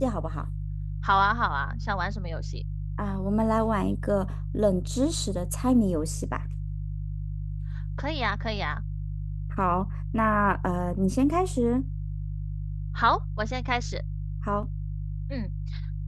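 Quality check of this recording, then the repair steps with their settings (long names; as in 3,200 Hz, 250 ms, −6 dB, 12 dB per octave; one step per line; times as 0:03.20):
mains hum 50 Hz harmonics 3 −32 dBFS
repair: hum removal 50 Hz, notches 3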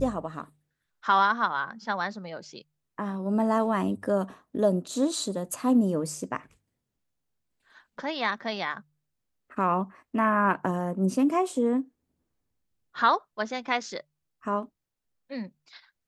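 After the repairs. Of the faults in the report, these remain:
none of them is left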